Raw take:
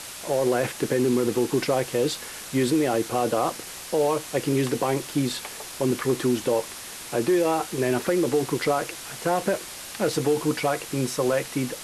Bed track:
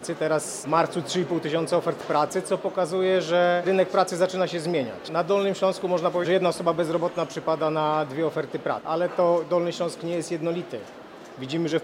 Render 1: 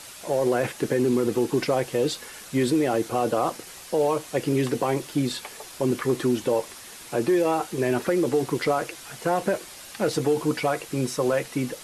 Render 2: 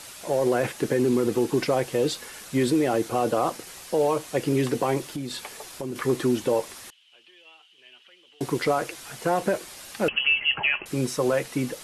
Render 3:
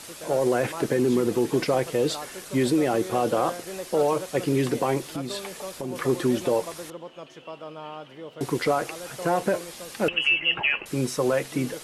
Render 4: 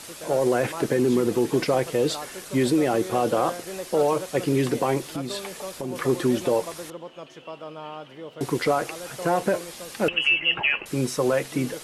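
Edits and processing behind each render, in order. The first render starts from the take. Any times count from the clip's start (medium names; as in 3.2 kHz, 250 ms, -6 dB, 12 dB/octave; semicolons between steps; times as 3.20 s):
noise reduction 6 dB, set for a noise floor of -39 dBFS
5.03–5.96 s: compression 4:1, threshold -29 dBFS; 6.90–8.41 s: band-pass filter 3 kHz, Q 14; 10.08–10.86 s: frequency inversion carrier 3.1 kHz
add bed track -15 dB
trim +1 dB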